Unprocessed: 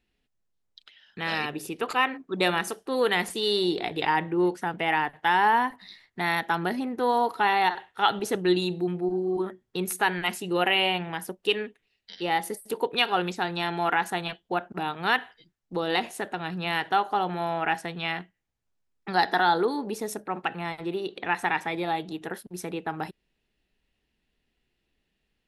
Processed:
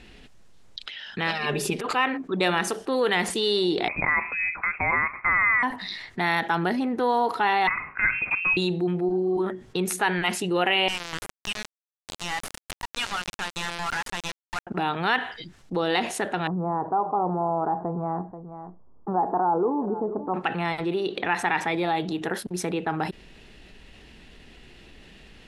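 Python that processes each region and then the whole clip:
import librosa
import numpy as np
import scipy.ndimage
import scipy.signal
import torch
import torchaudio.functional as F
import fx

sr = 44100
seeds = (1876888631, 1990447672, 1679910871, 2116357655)

y = fx.chain(x, sr, fx.comb(ms=4.9, depth=0.87),
    fx.over_compress(threshold_db=-31.0, ratio=-0.5), at=(1.31, 1.86))
y = fx.chain(y, sr, fx.highpass(hz=490.0, slope=24),
    fx.freq_invert(carrier_hz=2900), at=(3.88, 5.63))
y = fx.chain(y, sr, fx.highpass(hz=280.0, slope=12),
    fx.freq_invert(carrier_hz=2900), at=(7.67, 8.57))
y = fx.chain(y, sr, fx.highpass(hz=1000.0, slope=24),
    fx.tube_stage(drive_db=31.0, bias=0.6),
    fx.sample_gate(floor_db=-36.0), at=(10.88, 14.67))
y = fx.chain(y, sr, fx.ellip_lowpass(hz=1100.0, order=4, stop_db=60),
    fx.echo_single(ms=484, db=-22.5), at=(16.47, 20.34))
y = scipy.signal.sosfilt(scipy.signal.cheby1(2, 1.0, 9100.0, 'lowpass', fs=sr, output='sos'), y)
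y = fx.high_shelf(y, sr, hz=7200.0, db=-7.0)
y = fx.env_flatten(y, sr, amount_pct=50)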